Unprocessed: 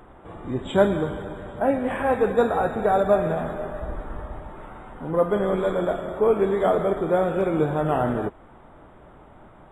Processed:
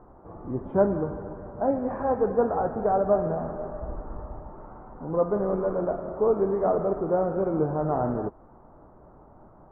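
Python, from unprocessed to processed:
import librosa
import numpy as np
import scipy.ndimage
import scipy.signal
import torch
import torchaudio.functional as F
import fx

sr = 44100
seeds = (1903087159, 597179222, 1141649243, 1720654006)

y = scipy.signal.sosfilt(scipy.signal.butter(4, 1200.0, 'lowpass', fs=sr, output='sos'), x)
y = y * 10.0 ** (-3.0 / 20.0)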